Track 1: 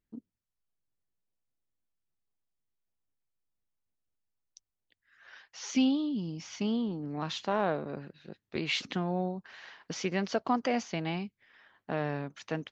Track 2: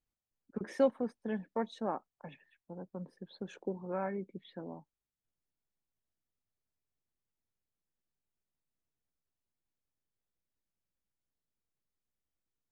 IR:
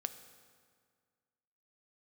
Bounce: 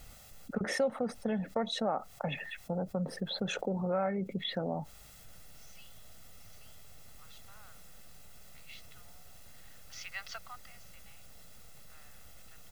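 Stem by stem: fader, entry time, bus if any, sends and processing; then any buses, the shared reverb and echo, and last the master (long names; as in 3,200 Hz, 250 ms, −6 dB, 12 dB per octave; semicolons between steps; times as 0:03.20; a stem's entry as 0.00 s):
−4.5 dB, 0.00 s, no send, high-pass filter 1,100 Hz 24 dB per octave; automatic ducking −17 dB, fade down 0.35 s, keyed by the second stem
+2.5 dB, 0.00 s, no send, envelope flattener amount 50%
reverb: not used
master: comb filter 1.5 ms, depth 58%; downward compressor 2 to 1, threshold −32 dBFS, peak gain reduction 8 dB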